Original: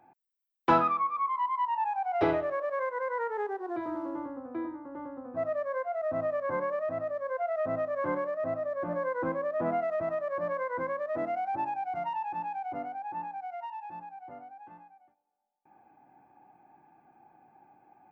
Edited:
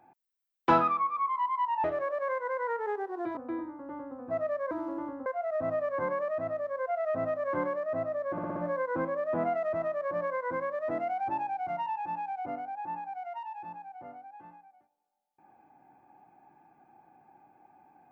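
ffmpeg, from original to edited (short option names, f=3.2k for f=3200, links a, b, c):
-filter_complex "[0:a]asplit=9[a][b][c][d][e][f][g][h][i];[a]atrim=end=1.842[j];[b]atrim=start=2.348:end=3.882[k];[c]atrim=start=4.428:end=5.772[l];[d]atrim=start=3.878:end=4.432[m];[e]atrim=start=5.768:end=8.892[n];[f]atrim=start=8.828:end=8.892[o];[g]atrim=start=8.828:end=8.892[p];[h]atrim=start=8.828:end=8.892[q];[i]atrim=start=8.828[r];[j][k]acrossfade=d=0.004:c1=hsin:c2=hsin[s];[s][l]acrossfade=d=0.004:c1=hsin:c2=hsin[t];[t][m]acrossfade=d=0.004:c1=hsin:c2=hsin[u];[u][n]acrossfade=d=0.004:c1=hsin:c2=hsin[v];[v][o]acrossfade=d=0.004:c1=hsin:c2=hsin[w];[w][p]acrossfade=d=0.004:c1=hsin:c2=hsin[x];[x][q]acrossfade=d=0.004:c1=hsin:c2=hsin[y];[y][r]acrossfade=d=0.004:c1=hsin:c2=hsin"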